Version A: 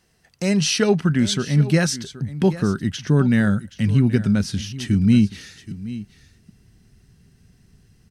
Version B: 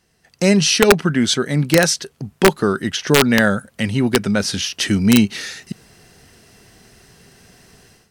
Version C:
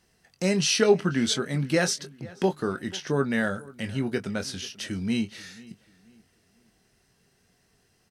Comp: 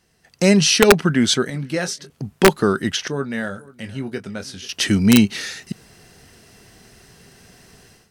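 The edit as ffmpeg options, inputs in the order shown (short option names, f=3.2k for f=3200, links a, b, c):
-filter_complex "[2:a]asplit=2[a][b];[1:a]asplit=3[c][d][e];[c]atrim=end=1.502[f];[a]atrim=start=1.498:end=2.102[g];[d]atrim=start=2.098:end=3.082[h];[b]atrim=start=3.078:end=4.692[i];[e]atrim=start=4.688[j];[f][g]acrossfade=d=0.004:c1=hsin:c2=hsin[k];[k][h]acrossfade=d=0.004:c1=hsin:c2=hsin[l];[l][i]acrossfade=d=0.004:c1=hsin:c2=hsin[m];[m][j]acrossfade=d=0.004:c1=hsin:c2=hsin"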